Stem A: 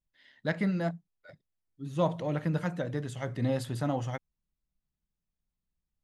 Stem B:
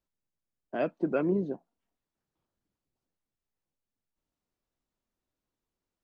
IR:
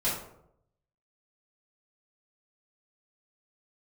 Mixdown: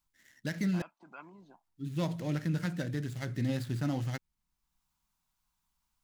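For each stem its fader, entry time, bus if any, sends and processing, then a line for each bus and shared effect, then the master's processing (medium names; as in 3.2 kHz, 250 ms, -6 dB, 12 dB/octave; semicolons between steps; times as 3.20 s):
+1.0 dB, 0.00 s, muted 0.82–1.39 s, no send, median filter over 15 samples; high-order bell 730 Hz -8.5 dB
+2.0 dB, 0.00 s, no send, peak limiter -23.5 dBFS, peak gain reduction 7.5 dB; resonant low shelf 660 Hz -11.5 dB, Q 3; band-stop 1.8 kHz, Q 11; auto duck -12 dB, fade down 0.25 s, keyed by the first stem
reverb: none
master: treble shelf 3.4 kHz +9.5 dB; peak limiter -23.5 dBFS, peak gain reduction 7.5 dB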